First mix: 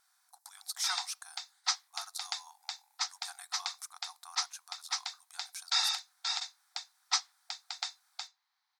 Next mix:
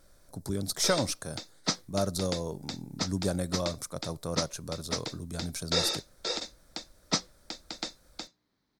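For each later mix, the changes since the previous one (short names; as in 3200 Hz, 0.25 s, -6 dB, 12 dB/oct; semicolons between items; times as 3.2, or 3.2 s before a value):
speech +5.5 dB; master: remove brick-wall FIR high-pass 710 Hz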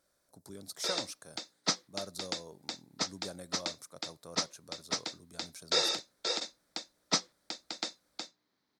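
speech -11.0 dB; master: add HPF 320 Hz 6 dB/oct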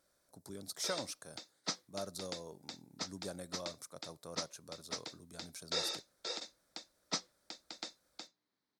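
background -8.0 dB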